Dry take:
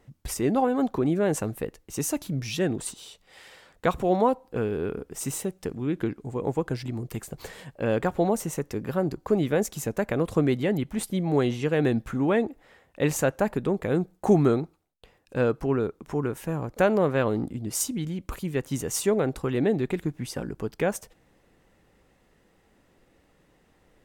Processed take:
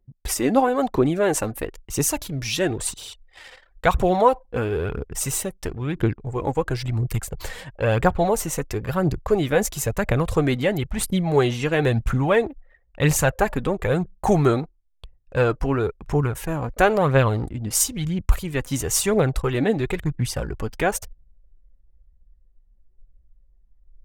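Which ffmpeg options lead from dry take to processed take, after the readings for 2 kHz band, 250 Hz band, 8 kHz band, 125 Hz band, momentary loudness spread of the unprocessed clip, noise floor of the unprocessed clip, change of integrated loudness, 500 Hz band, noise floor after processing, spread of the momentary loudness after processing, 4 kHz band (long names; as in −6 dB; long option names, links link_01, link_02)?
+7.5 dB, +1.5 dB, +7.5 dB, +6.5 dB, 10 LU, −64 dBFS, +4.0 dB, +3.5 dB, −58 dBFS, 9 LU, +8.0 dB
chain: -af "lowshelf=frequency=280:gain=-7.5,anlmdn=0.00631,asubboost=boost=7:cutoff=96,aphaser=in_gain=1:out_gain=1:delay=4.2:decay=0.43:speed=0.99:type=triangular,volume=7dB"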